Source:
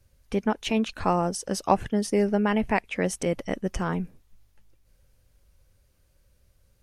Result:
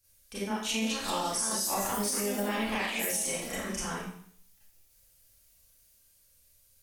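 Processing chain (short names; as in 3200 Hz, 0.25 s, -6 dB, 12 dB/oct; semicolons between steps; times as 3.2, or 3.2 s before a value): pre-emphasis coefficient 0.9; echoes that change speed 0.529 s, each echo +4 st, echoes 2, each echo -6 dB; Schroeder reverb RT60 0.6 s, combs from 28 ms, DRR -9.5 dB; limiter -21 dBFS, peak gain reduction 8 dB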